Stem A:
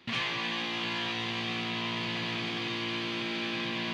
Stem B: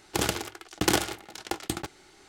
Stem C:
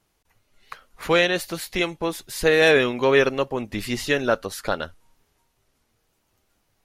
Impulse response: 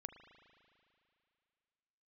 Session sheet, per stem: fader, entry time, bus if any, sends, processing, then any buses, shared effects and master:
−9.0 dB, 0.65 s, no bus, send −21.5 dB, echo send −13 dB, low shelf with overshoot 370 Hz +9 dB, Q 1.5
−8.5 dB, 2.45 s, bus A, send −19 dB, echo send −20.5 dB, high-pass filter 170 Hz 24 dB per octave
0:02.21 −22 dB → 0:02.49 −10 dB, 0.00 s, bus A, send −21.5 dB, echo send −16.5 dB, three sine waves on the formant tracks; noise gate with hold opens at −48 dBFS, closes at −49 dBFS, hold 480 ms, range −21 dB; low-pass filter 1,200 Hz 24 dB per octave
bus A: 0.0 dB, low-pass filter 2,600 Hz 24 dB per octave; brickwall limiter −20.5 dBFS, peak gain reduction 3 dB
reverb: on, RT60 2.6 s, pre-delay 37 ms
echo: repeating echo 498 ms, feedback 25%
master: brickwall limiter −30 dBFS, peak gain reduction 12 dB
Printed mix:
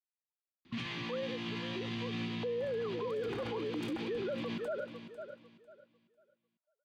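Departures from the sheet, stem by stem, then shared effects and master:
stem B: missing high-pass filter 170 Hz 24 dB per octave
stem C −22.0 dB → −13.0 dB

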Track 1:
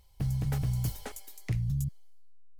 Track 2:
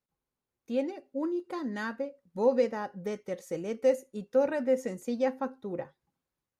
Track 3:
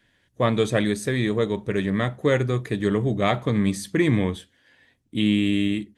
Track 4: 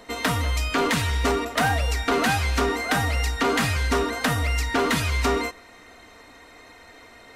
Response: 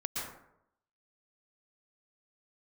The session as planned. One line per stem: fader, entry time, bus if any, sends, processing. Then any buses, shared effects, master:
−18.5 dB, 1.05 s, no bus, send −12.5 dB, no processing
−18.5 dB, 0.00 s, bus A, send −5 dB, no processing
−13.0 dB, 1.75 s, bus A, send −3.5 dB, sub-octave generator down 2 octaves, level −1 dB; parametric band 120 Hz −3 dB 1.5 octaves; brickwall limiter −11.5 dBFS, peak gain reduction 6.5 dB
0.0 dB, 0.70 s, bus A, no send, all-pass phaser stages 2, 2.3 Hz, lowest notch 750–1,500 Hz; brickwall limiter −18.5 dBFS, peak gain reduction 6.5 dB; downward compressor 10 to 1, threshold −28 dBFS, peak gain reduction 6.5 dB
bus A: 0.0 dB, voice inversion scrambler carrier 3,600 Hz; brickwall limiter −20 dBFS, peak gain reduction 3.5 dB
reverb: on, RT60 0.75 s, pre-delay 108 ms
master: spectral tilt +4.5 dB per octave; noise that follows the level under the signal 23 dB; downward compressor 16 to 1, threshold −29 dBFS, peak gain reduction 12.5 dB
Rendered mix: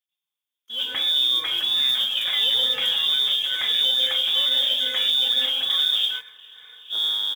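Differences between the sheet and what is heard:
stem 2 −18.5 dB → −9.0 dB
stem 3: send off
master: missing downward compressor 16 to 1, threshold −29 dBFS, peak gain reduction 12.5 dB

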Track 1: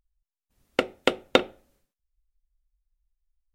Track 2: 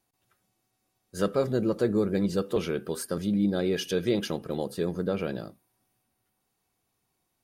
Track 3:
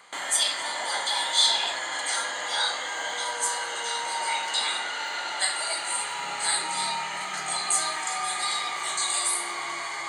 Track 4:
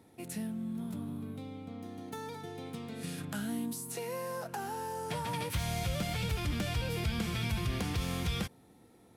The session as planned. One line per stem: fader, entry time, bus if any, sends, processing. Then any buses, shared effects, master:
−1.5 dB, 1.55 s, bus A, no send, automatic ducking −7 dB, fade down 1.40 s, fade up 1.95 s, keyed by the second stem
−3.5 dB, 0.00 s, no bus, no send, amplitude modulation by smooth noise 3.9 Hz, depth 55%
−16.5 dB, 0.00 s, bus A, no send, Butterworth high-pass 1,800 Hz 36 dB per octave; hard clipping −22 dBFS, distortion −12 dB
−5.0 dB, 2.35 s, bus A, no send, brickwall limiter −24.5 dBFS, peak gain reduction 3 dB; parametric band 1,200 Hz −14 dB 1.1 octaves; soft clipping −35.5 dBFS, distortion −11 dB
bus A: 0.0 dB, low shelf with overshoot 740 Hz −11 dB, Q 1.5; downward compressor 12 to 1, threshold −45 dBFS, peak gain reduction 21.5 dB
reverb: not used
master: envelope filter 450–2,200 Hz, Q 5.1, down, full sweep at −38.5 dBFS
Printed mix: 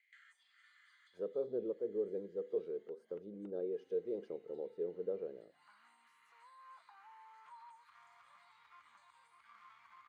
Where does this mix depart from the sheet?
stem 1: entry 1.55 s → 2.10 s
stem 3: missing hard clipping −22 dBFS, distortion −12 dB
stem 4: missing parametric band 1,200 Hz −14 dB 1.1 octaves

